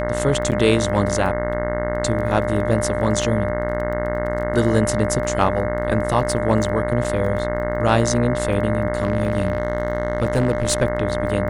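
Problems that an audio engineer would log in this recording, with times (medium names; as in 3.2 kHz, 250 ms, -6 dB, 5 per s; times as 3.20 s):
buzz 60 Hz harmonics 36 -26 dBFS
crackle 14 per s -30 dBFS
whine 600 Hz -24 dBFS
0.51–0.52 s: dropout 8.3 ms
7.04–7.05 s: dropout 5.4 ms
8.97–10.83 s: clipped -12.5 dBFS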